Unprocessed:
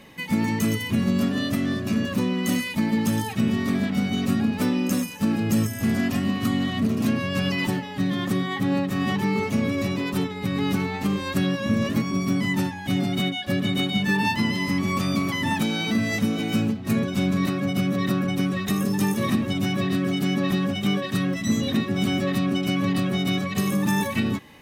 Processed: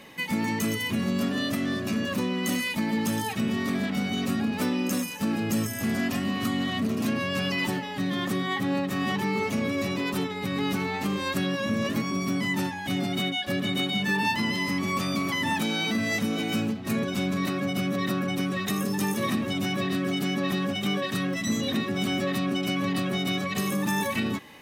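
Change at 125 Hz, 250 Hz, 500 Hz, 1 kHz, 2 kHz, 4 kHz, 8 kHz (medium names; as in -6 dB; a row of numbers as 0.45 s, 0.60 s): -6.0 dB, -4.5 dB, -1.5 dB, -0.5 dB, -0.5 dB, -0.5 dB, -0.5 dB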